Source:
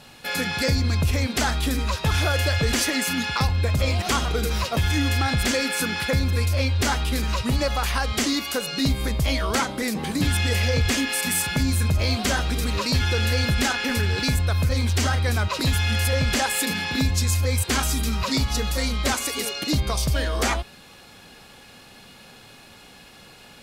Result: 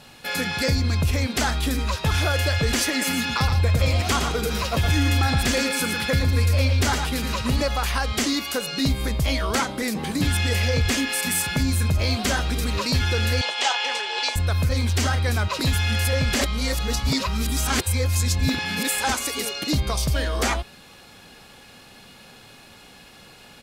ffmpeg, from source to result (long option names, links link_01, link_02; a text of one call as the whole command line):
ffmpeg -i in.wav -filter_complex "[0:a]asplit=3[link_01][link_02][link_03];[link_01]afade=type=out:start_time=3:duration=0.02[link_04];[link_02]aecho=1:1:115:0.473,afade=type=in:start_time=3:duration=0.02,afade=type=out:start_time=7.61:duration=0.02[link_05];[link_03]afade=type=in:start_time=7.61:duration=0.02[link_06];[link_04][link_05][link_06]amix=inputs=3:normalize=0,asettb=1/sr,asplit=3[link_07][link_08][link_09];[link_07]atrim=end=13.414[link_10];[link_08]atrim=start=13.41:end=14.36,asetpts=PTS-STARTPTS,afade=type=in:duration=0.004:curve=qsin,afade=type=out:start_time=0.946:duration=0.004:curve=qsin,highpass=frequency=490:width=0.5412,highpass=frequency=490:width=1.3066,equalizer=frequency=890:width_type=q:width=4:gain=9,equalizer=frequency=1500:width_type=q:width=4:gain=-5,equalizer=frequency=3100:width_type=q:width=4:gain=8,lowpass=frequency=8100:width=0.5412,lowpass=frequency=8100:width=1.3066[link_11];[link_09]atrim=start=14.356[link_12];[link_10][link_11]acrossfade=duration=0.004:curve1=hsin:curve2=qsin[link_13];[link_13][link_12]acrossfade=duration=0.004:curve1=qsin:curve2=hsin,asplit=3[link_14][link_15][link_16];[link_14]atrim=end=16.412[link_17];[link_15]atrim=start=16.408:end=19.092,asetpts=PTS-STARTPTS,areverse[link_18];[link_16]atrim=start=19.088[link_19];[link_17][link_18]acrossfade=duration=0.004:curve1=hsin:curve2=hsin[link_20];[link_20][link_19]acrossfade=duration=0.004:curve1=hsin:curve2=hsin" out.wav